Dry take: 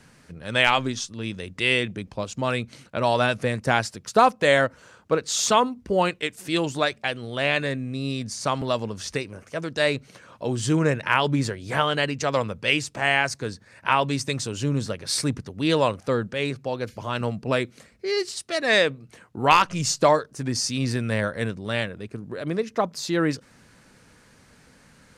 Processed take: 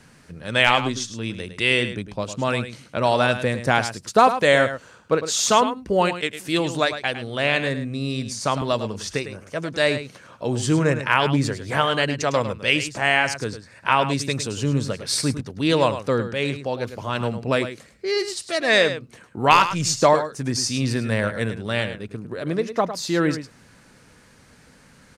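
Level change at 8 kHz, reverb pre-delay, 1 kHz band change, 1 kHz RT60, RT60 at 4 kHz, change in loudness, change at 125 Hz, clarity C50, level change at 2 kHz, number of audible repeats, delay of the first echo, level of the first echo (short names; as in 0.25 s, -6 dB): +2.5 dB, none, +2.5 dB, none, none, +2.5 dB, +2.5 dB, none, +2.5 dB, 1, 0.105 s, -11.0 dB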